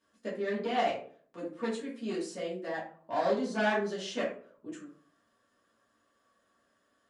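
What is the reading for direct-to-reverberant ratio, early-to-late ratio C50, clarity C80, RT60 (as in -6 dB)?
-7.5 dB, 6.0 dB, 11.5 dB, 0.50 s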